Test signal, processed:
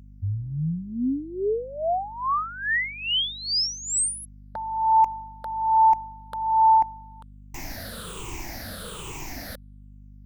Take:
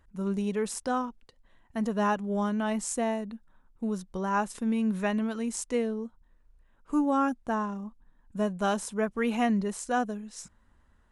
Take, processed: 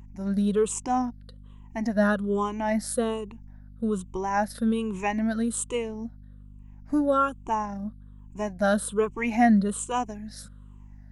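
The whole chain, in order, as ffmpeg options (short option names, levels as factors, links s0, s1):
-af "afftfilt=real='re*pow(10,17/40*sin(2*PI*(0.7*log(max(b,1)*sr/1024/100)/log(2)-(-1.2)*(pts-256)/sr)))':imag='im*pow(10,17/40*sin(2*PI*(0.7*log(max(b,1)*sr/1024/100)/log(2)-(-1.2)*(pts-256)/sr)))':win_size=1024:overlap=0.75,aeval=exprs='val(0)+0.00562*(sin(2*PI*50*n/s)+sin(2*PI*2*50*n/s)/2+sin(2*PI*3*50*n/s)/3+sin(2*PI*4*50*n/s)/4+sin(2*PI*5*50*n/s)/5)':c=same"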